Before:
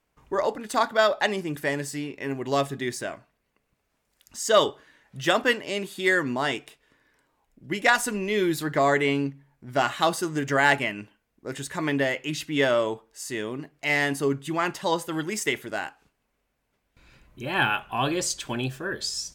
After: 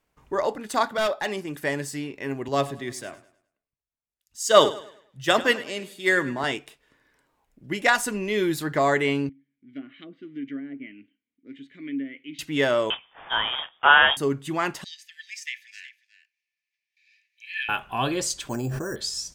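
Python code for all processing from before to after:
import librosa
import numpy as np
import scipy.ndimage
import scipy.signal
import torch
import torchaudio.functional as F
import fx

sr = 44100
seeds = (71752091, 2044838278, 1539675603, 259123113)

y = fx.chain(x, sr, fx.low_shelf(hz=140.0, db=-9.5),
    fx.transient(attack_db=-7, sustain_db=-1),
    fx.clip_hard(threshold_db=-20.0), at=(0.95, 1.63))
y = fx.chain(y, sr, fx.echo_feedback(ms=103, feedback_pct=49, wet_db=-15),
    fx.band_widen(depth_pct=70), at=(2.48, 6.44))
y = fx.chain(y, sr, fx.band_shelf(hz=7100.0, db=-9.0, octaves=1.3),
    fx.env_lowpass_down(base_hz=720.0, full_db=-17.0),
    fx.vowel_filter(vowel='i'), at=(9.29, 12.39))
y = fx.chain(y, sr, fx.block_float(bits=3),
    fx.freq_invert(carrier_hz=3500),
    fx.peak_eq(hz=930.0, db=15.0, octaves=1.8), at=(12.9, 14.17))
y = fx.chain(y, sr, fx.cheby_ripple_highpass(hz=1700.0, ripple_db=9),
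    fx.high_shelf_res(hz=5800.0, db=-9.5, q=1.5),
    fx.echo_single(ms=366, db=-14.5), at=(14.84, 17.69))
y = fx.chain(y, sr, fx.lowpass(hz=1200.0, slope=12),
    fx.resample_bad(factor=6, down='none', up='hold'),
    fx.sustainer(db_per_s=20.0), at=(18.49, 18.96))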